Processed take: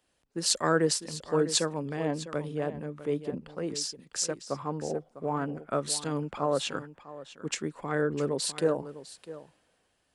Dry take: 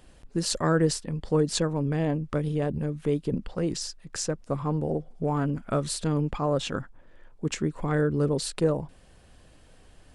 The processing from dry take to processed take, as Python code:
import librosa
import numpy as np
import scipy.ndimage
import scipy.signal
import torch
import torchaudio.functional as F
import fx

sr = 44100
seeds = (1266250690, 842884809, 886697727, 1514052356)

y = fx.highpass(x, sr, hz=450.0, slope=6)
y = y + 10.0 ** (-11.5 / 20.0) * np.pad(y, (int(653 * sr / 1000.0), 0))[:len(y)]
y = fx.band_widen(y, sr, depth_pct=40)